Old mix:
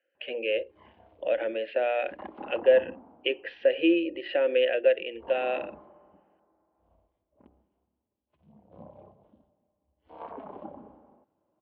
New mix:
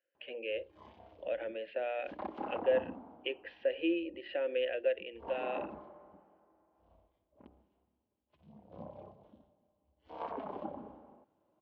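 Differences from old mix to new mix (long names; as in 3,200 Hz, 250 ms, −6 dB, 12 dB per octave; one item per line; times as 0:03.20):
speech −9.5 dB
background: remove high-frequency loss of the air 250 metres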